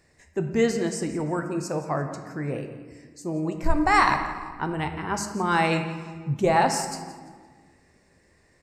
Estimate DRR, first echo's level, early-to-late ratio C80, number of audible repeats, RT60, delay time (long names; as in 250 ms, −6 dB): 5.0 dB, −15.5 dB, 8.5 dB, 2, 1.6 s, 171 ms